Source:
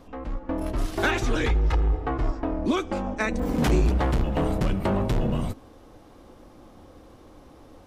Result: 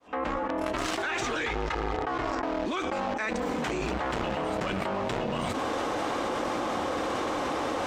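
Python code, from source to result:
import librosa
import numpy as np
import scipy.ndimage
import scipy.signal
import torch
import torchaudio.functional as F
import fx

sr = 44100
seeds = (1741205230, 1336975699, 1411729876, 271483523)

p1 = fx.fade_in_head(x, sr, length_s=1.81)
p2 = fx.highpass(p1, sr, hz=1300.0, slope=6)
p3 = fx.high_shelf_res(p2, sr, hz=6400.0, db=8.5, q=1.5)
p4 = fx.quant_companded(p3, sr, bits=2)
p5 = p3 + (p4 * 10.0 ** (-10.0 / 20.0))
p6 = fx.air_absorb(p5, sr, metres=170.0)
p7 = fx.env_flatten(p6, sr, amount_pct=100)
y = p7 * 10.0 ** (-3.5 / 20.0)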